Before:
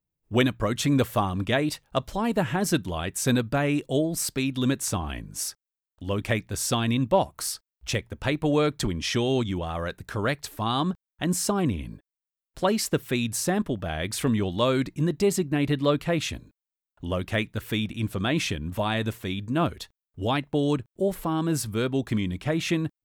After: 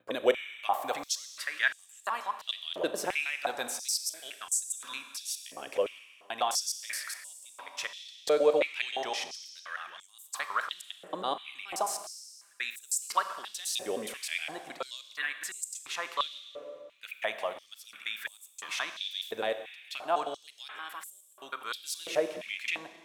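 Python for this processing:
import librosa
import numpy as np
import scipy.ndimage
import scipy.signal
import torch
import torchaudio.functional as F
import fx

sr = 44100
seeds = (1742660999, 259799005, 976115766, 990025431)

y = fx.block_reorder(x, sr, ms=105.0, group=6)
y = fx.rev_schroeder(y, sr, rt60_s=1.8, comb_ms=29, drr_db=9.0)
y = fx.filter_held_highpass(y, sr, hz=2.9, low_hz=520.0, high_hz=7600.0)
y = y * librosa.db_to_amplitude(-7.0)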